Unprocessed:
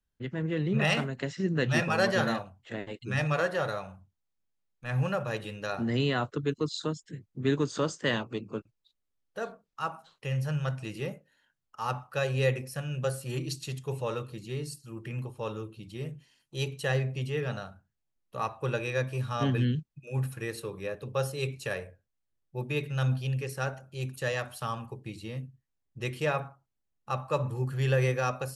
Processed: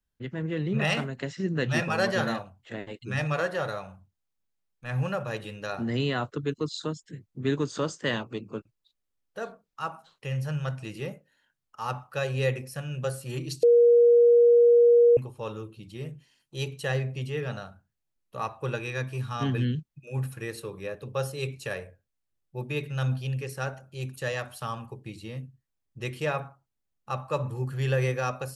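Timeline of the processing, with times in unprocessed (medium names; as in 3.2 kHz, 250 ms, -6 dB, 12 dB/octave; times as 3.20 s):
13.63–15.17 s: bleep 475 Hz -14 dBFS
18.75–19.51 s: peaking EQ 560 Hz -13 dB 0.22 oct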